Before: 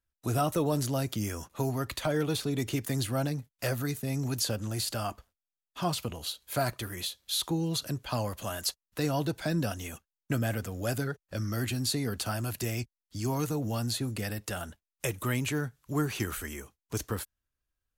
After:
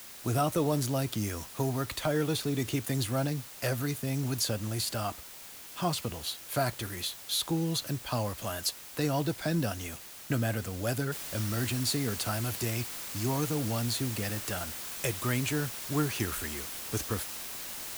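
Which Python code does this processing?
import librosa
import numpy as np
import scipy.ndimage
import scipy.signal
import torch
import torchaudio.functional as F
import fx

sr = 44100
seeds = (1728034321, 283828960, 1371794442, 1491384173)

y = fx.noise_floor_step(x, sr, seeds[0], at_s=11.12, before_db=-47, after_db=-40, tilt_db=0.0)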